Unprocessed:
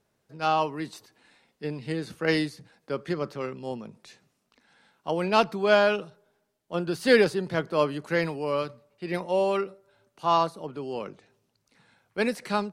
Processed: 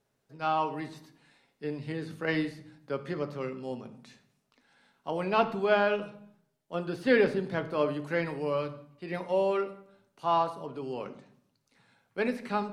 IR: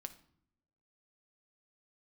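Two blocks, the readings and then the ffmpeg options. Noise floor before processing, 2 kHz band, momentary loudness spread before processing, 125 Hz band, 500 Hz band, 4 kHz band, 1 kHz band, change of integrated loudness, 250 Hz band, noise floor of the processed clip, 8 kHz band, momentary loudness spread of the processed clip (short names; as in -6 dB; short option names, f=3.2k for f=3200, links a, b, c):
-75 dBFS, -4.0 dB, 16 LU, -3.5 dB, -3.5 dB, -8.0 dB, -3.5 dB, -4.0 dB, -3.0 dB, -77 dBFS, under -10 dB, 14 LU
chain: -filter_complex "[0:a]bandreject=f=50:t=h:w=6,bandreject=f=100:t=h:w=6,bandreject=f=150:t=h:w=6,acrossover=split=3400[a][b];[b]acompressor=threshold=-52dB:ratio=4:attack=1:release=60[c];[a][c]amix=inputs=2:normalize=0[d];[1:a]atrim=start_sample=2205,afade=t=out:st=0.43:d=0.01,atrim=end_sample=19404,asetrate=37044,aresample=44100[e];[d][e]afir=irnorm=-1:irlink=0"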